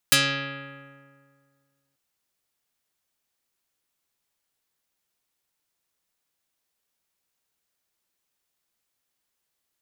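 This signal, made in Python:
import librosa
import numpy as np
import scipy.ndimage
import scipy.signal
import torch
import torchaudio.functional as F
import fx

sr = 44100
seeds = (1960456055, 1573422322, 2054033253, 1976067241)

y = fx.pluck(sr, length_s=1.84, note=49, decay_s=2.02, pick=0.38, brightness='dark')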